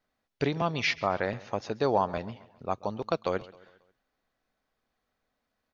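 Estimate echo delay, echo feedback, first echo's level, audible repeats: 135 ms, 48%, −20.0 dB, 3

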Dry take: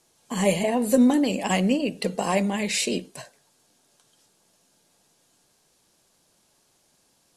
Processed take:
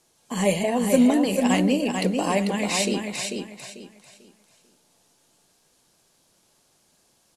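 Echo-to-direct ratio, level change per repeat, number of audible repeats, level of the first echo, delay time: −4.5 dB, −11.0 dB, 3, −5.0 dB, 443 ms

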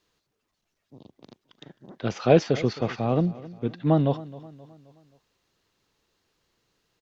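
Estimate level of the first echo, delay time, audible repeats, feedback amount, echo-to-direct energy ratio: −18.5 dB, 264 ms, 3, 47%, −17.5 dB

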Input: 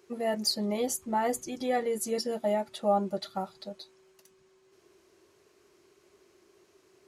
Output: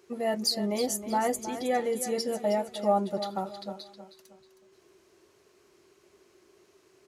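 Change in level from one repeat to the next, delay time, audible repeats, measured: −9.5 dB, 316 ms, 3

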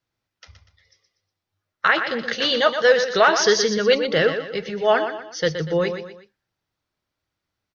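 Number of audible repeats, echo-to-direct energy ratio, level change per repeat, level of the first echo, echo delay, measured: 3, −8.0 dB, −8.0 dB, −8.5 dB, 121 ms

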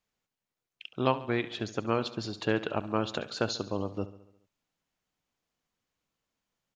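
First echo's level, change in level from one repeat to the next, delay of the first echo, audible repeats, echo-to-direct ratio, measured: −15.5 dB, −4.5 dB, 70 ms, 5, −13.5 dB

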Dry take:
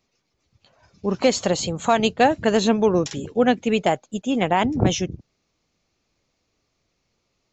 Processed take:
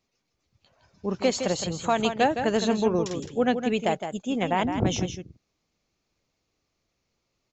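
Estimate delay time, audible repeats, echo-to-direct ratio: 163 ms, 1, −8.0 dB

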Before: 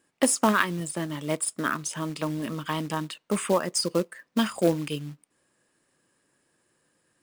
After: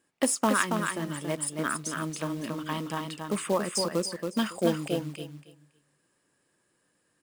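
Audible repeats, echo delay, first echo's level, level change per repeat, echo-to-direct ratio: 3, 278 ms, −5.0 dB, −15.0 dB, −5.0 dB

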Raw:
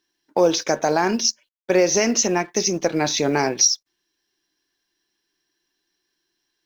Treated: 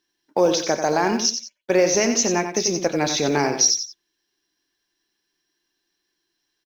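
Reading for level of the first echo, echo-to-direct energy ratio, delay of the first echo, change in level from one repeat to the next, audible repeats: −8.0 dB, −7.5 dB, 90 ms, −9.5 dB, 2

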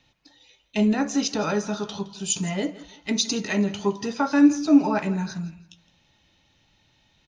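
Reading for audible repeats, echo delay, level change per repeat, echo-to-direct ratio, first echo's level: 2, 165 ms, −10.5 dB, −17.5 dB, −18.0 dB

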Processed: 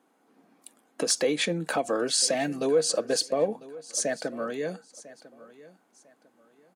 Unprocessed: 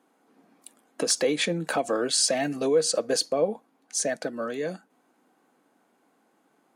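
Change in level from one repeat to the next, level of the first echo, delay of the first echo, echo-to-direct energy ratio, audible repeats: −11.0 dB, −19.0 dB, 999 ms, −18.5 dB, 2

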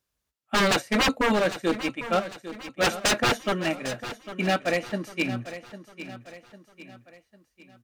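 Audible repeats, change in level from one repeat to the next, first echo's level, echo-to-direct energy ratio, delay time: 4, −7.0 dB, −13.0 dB, −12.0 dB, 801 ms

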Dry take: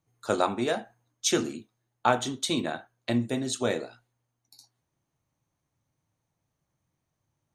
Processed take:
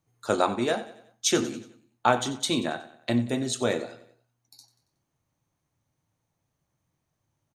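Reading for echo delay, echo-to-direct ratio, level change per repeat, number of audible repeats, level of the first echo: 92 ms, −15.0 dB, −6.5 dB, 3, −16.0 dB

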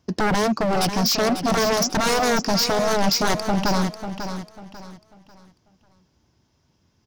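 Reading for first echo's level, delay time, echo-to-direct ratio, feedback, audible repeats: −9.0 dB, 544 ms, −8.5 dB, 31%, 3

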